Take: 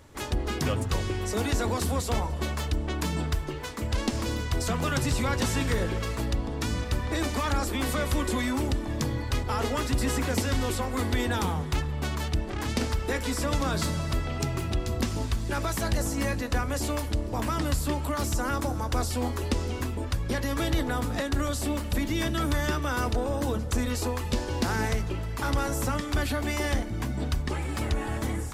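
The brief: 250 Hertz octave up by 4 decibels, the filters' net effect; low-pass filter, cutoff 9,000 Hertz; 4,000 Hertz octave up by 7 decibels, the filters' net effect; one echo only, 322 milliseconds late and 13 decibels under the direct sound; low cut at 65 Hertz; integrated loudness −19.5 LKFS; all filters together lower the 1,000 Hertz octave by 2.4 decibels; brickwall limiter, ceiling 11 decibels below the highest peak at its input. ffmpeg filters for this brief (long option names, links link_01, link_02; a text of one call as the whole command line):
ffmpeg -i in.wav -af "highpass=65,lowpass=9000,equalizer=frequency=250:width_type=o:gain=5,equalizer=frequency=1000:width_type=o:gain=-4,equalizer=frequency=4000:width_type=o:gain=9,alimiter=limit=-21dB:level=0:latency=1,aecho=1:1:322:0.224,volume=11dB" out.wav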